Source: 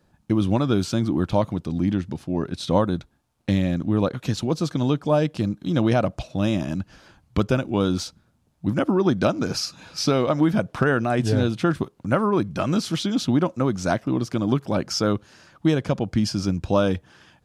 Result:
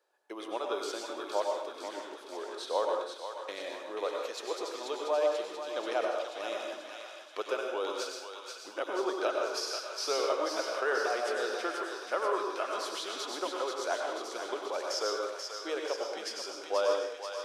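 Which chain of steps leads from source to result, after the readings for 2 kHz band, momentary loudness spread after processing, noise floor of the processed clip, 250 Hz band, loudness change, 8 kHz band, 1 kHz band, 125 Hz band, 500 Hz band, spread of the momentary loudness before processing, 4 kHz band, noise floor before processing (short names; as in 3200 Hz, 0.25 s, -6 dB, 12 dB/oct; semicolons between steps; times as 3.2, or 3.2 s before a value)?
-5.5 dB, 10 LU, -47 dBFS, -23.0 dB, -10.5 dB, -5.0 dB, -5.5 dB, under -40 dB, -7.0 dB, 7 LU, -5.5 dB, -64 dBFS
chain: elliptic high-pass 410 Hz, stop band 70 dB; thinning echo 0.485 s, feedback 67%, high-pass 1100 Hz, level -5 dB; plate-style reverb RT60 0.71 s, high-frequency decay 0.8×, pre-delay 85 ms, DRR 1.5 dB; gain -8.5 dB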